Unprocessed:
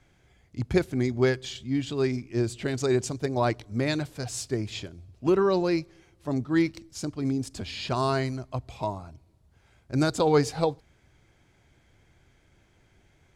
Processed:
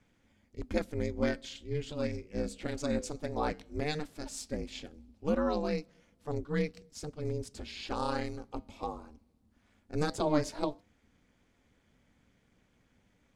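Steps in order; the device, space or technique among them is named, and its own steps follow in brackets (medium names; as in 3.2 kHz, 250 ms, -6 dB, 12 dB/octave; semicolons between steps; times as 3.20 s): alien voice (ring modulator 150 Hz; flange 0.16 Hz, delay 0.1 ms, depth 9 ms, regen -88%)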